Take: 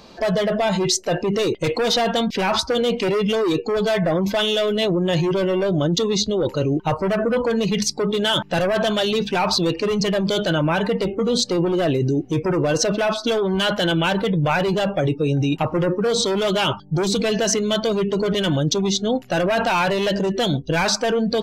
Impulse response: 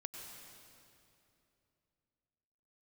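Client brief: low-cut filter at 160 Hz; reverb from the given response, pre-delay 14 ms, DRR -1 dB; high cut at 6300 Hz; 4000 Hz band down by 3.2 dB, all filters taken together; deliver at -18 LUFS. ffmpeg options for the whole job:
-filter_complex "[0:a]highpass=160,lowpass=6.3k,equalizer=f=4k:t=o:g=-3.5,asplit=2[a][b];[1:a]atrim=start_sample=2205,adelay=14[c];[b][c]afir=irnorm=-1:irlink=0,volume=3.5dB[d];[a][d]amix=inputs=2:normalize=0,volume=-0.5dB"

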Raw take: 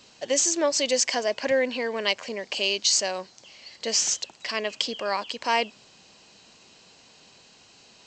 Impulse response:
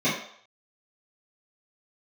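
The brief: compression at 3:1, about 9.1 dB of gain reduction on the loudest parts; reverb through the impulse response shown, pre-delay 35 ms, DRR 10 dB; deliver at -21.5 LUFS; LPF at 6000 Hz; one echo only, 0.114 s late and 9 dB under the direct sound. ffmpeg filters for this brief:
-filter_complex "[0:a]lowpass=6k,acompressor=threshold=-31dB:ratio=3,aecho=1:1:114:0.355,asplit=2[a][b];[1:a]atrim=start_sample=2205,adelay=35[c];[b][c]afir=irnorm=-1:irlink=0,volume=-25dB[d];[a][d]amix=inputs=2:normalize=0,volume=10.5dB"

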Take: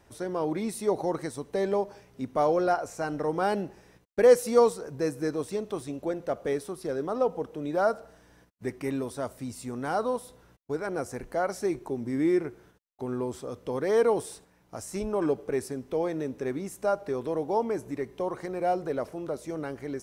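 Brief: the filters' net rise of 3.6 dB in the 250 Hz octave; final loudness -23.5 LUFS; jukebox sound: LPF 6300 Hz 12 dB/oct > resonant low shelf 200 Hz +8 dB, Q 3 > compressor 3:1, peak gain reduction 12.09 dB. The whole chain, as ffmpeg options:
-af "lowpass=6.3k,lowshelf=f=200:t=q:w=3:g=8,equalizer=f=250:t=o:g=6,acompressor=threshold=-29dB:ratio=3,volume=9.5dB"

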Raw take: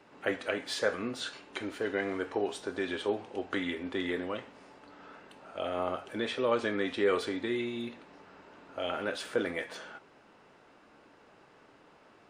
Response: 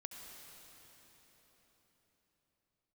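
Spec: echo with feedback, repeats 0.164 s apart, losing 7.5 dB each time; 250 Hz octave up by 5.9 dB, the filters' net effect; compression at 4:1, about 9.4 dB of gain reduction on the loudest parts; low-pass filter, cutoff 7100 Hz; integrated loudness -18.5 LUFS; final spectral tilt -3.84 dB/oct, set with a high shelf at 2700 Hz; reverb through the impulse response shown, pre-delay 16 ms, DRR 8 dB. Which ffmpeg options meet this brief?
-filter_complex "[0:a]lowpass=7.1k,equalizer=f=250:t=o:g=7.5,highshelf=f=2.7k:g=-6,acompressor=threshold=-33dB:ratio=4,aecho=1:1:164|328|492|656|820:0.422|0.177|0.0744|0.0312|0.0131,asplit=2[a][b];[1:a]atrim=start_sample=2205,adelay=16[c];[b][c]afir=irnorm=-1:irlink=0,volume=-4.5dB[d];[a][d]amix=inputs=2:normalize=0,volume=18.5dB"

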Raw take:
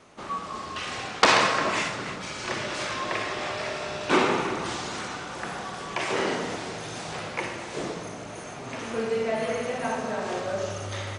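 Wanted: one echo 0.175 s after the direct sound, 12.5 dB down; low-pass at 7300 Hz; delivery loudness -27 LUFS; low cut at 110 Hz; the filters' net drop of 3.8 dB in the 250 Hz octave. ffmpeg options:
-af "highpass=110,lowpass=7.3k,equalizer=f=250:t=o:g=-5,aecho=1:1:175:0.237,volume=1.5dB"

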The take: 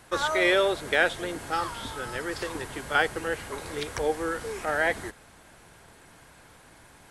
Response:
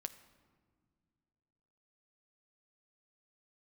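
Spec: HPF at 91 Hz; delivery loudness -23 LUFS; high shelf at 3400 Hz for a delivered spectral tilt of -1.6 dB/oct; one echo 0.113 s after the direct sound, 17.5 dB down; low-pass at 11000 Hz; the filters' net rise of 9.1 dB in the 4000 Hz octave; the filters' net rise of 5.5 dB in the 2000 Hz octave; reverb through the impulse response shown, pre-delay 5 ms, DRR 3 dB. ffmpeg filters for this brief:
-filter_complex "[0:a]highpass=91,lowpass=11k,equalizer=f=2k:t=o:g=4.5,highshelf=f=3.4k:g=3.5,equalizer=f=4k:t=o:g=7.5,aecho=1:1:113:0.133,asplit=2[a][b];[1:a]atrim=start_sample=2205,adelay=5[c];[b][c]afir=irnorm=-1:irlink=0,volume=0dB[d];[a][d]amix=inputs=2:normalize=0,volume=-1.5dB"

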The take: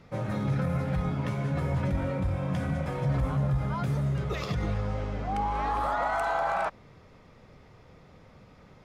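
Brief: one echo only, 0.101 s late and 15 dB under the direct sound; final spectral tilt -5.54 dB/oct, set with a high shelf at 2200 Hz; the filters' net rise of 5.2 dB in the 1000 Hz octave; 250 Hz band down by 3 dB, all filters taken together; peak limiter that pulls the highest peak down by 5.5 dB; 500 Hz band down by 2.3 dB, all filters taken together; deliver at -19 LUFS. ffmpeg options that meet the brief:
-af "equalizer=f=250:t=o:g=-4.5,equalizer=f=500:t=o:g=-6,equalizer=f=1k:t=o:g=8,highshelf=f=2.2k:g=5,alimiter=limit=-19dB:level=0:latency=1,aecho=1:1:101:0.178,volume=10.5dB"

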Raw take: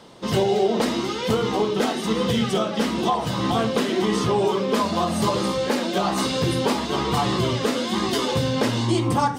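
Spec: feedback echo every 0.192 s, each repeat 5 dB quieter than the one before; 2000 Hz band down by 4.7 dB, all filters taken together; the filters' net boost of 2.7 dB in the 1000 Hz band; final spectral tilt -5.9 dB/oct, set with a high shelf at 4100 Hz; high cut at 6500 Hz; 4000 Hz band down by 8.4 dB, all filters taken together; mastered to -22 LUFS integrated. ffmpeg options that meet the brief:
-af "lowpass=6.5k,equalizer=f=1k:t=o:g=5,equalizer=f=2k:t=o:g=-5.5,equalizer=f=4k:t=o:g=-7,highshelf=f=4.1k:g=-3,aecho=1:1:192|384|576|768|960|1152|1344:0.562|0.315|0.176|0.0988|0.0553|0.031|0.0173,volume=-1.5dB"

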